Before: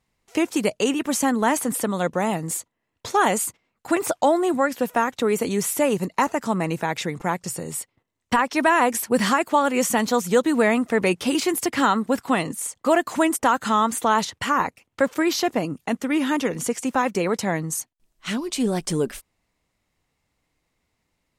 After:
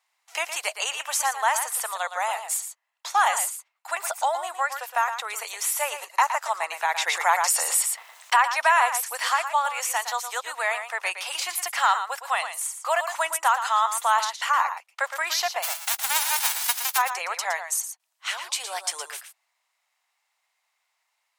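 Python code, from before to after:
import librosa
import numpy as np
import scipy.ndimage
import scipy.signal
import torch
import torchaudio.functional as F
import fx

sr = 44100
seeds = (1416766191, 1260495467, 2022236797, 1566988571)

y = fx.envelope_flatten(x, sr, power=0.1, at=(15.62, 16.97), fade=0.02)
y = fx.rider(y, sr, range_db=5, speed_s=2.0)
y = scipy.signal.sosfilt(scipy.signal.butter(6, 720.0, 'highpass', fs=sr, output='sos'), y)
y = y + 10.0 ** (-9.5 / 20.0) * np.pad(y, (int(115 * sr / 1000.0), 0))[:len(y)]
y = fx.env_flatten(y, sr, amount_pct=50, at=(7.06, 8.41), fade=0.02)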